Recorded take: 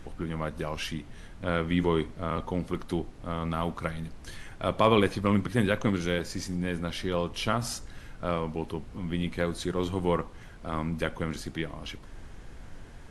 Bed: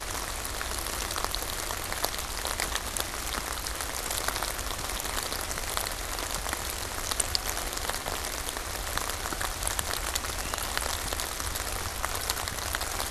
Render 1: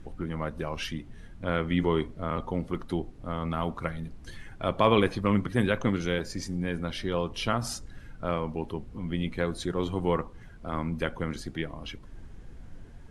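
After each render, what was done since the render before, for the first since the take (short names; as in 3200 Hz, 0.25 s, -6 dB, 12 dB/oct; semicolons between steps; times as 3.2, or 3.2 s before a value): denoiser 8 dB, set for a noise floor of -47 dBFS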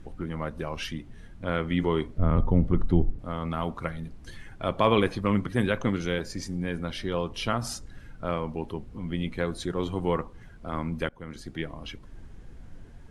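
2.18–3.19 RIAA curve playback; 11.09–11.63 fade in, from -19.5 dB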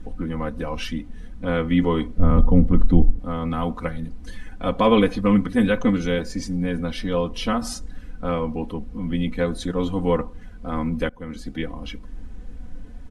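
low shelf 420 Hz +5.5 dB; comb 4 ms, depth 97%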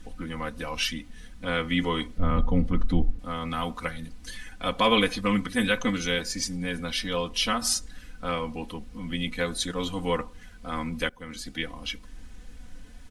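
tilt shelf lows -8.5 dB, about 1400 Hz; notch 390 Hz, Q 12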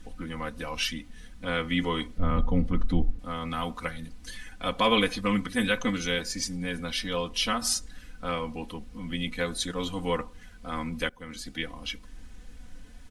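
gain -1.5 dB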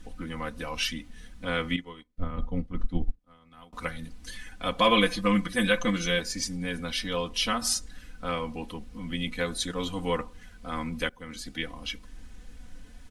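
1.76–3.73 upward expander 2.5:1, over -39 dBFS; 4.79–6.2 comb 5.8 ms, depth 58%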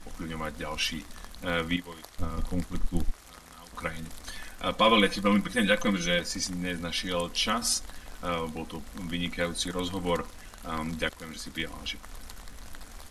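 add bed -18 dB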